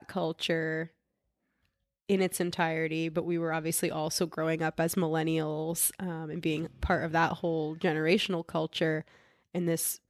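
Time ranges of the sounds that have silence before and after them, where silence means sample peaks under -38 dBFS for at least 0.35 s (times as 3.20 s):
2.09–9.01 s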